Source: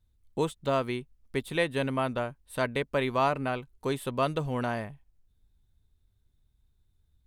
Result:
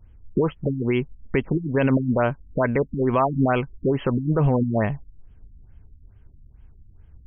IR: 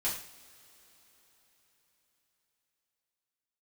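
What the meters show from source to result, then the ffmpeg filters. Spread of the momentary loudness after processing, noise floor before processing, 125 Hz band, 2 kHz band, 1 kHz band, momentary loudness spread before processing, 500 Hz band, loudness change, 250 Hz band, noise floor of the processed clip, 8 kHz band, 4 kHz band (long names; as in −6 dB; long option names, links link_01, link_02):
6 LU, −70 dBFS, +12.0 dB, +3.0 dB, +3.5 dB, 9 LU, +6.5 dB, +7.5 dB, +11.5 dB, −51 dBFS, below −30 dB, −5.0 dB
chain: -filter_complex "[0:a]asplit=2[link_01][link_02];[link_02]acompressor=threshold=-36dB:ratio=6,volume=2.5dB[link_03];[link_01][link_03]amix=inputs=2:normalize=0,alimiter=level_in=21.5dB:limit=-1dB:release=50:level=0:latency=1,afftfilt=real='re*lt(b*sr/1024,290*pow(3400/290,0.5+0.5*sin(2*PI*2.3*pts/sr)))':imag='im*lt(b*sr/1024,290*pow(3400/290,0.5+0.5*sin(2*PI*2.3*pts/sr)))':win_size=1024:overlap=0.75,volume=-9dB"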